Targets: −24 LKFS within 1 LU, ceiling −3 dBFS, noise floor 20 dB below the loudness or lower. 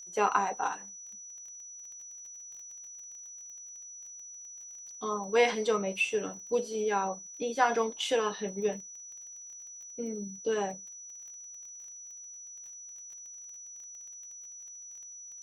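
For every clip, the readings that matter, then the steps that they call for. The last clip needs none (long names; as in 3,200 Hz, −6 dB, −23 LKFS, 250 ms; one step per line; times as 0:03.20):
crackle rate 21 per second; interfering tone 5,900 Hz; level of the tone −44 dBFS; integrated loudness −34.5 LKFS; sample peak −11.0 dBFS; target loudness −24.0 LKFS
→ click removal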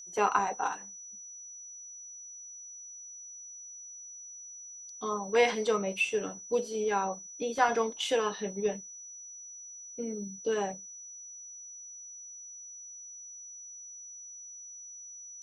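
crackle rate 0 per second; interfering tone 5,900 Hz; level of the tone −44 dBFS
→ notch filter 5,900 Hz, Q 30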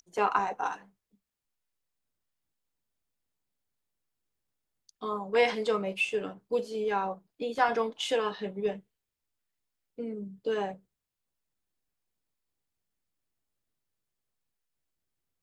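interfering tone none found; integrated loudness −31.0 LKFS; sample peak −11.0 dBFS; target loudness −24.0 LKFS
→ level +7 dB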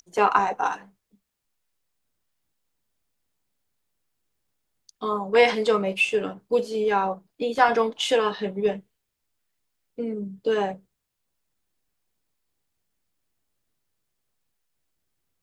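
integrated loudness −24.0 LKFS; sample peak −4.0 dBFS; background noise floor −80 dBFS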